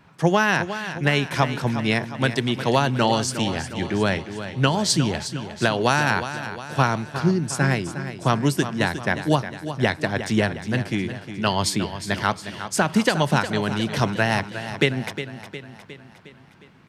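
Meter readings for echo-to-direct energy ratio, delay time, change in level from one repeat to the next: −9.5 dB, 359 ms, −5.5 dB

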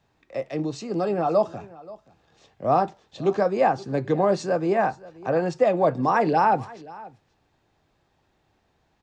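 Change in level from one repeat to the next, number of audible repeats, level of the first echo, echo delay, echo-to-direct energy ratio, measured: repeats not evenly spaced, 1, −20.5 dB, 529 ms, −20.5 dB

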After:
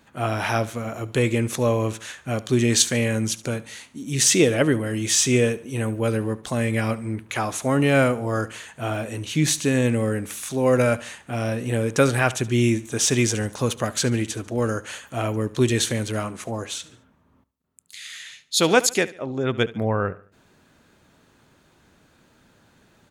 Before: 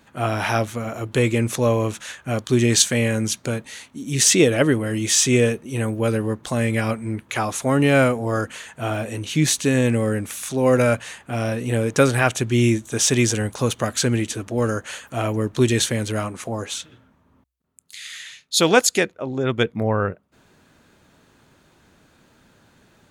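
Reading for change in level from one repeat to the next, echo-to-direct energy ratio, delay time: −8.0 dB, −18.0 dB, 72 ms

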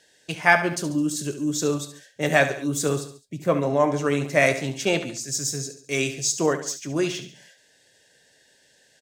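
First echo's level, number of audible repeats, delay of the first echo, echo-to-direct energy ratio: −11.5 dB, 3, 70 ms, −10.5 dB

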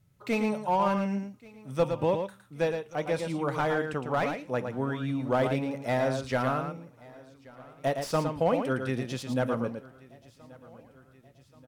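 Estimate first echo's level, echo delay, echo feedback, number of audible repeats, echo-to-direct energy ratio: −6.5 dB, 112 ms, repeats not evenly spaced, 6, −6.5 dB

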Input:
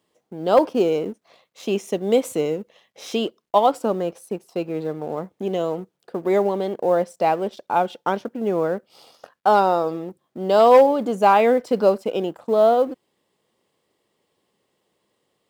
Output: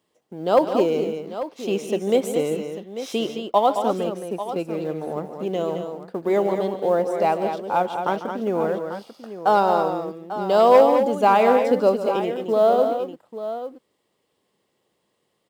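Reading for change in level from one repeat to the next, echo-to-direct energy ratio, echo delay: repeats not evenly spaced, −5.5 dB, 146 ms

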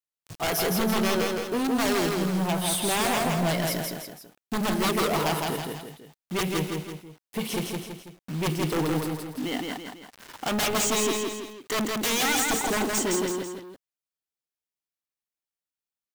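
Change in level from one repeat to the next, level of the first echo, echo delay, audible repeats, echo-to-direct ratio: −6.5 dB, −3.0 dB, 165 ms, 3, −2.0 dB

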